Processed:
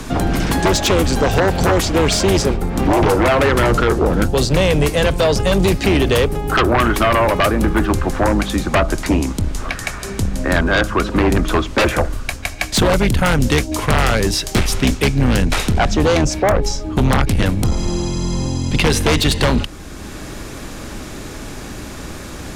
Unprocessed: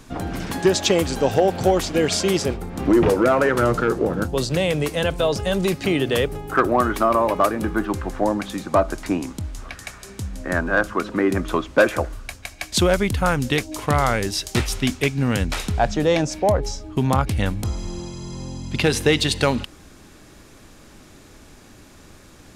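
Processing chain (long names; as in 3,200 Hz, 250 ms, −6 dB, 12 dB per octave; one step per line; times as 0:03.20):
sub-octave generator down 2 octaves, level −1 dB
sine wavefolder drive 9 dB, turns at −4.5 dBFS
multiband upward and downward compressor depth 40%
level −5 dB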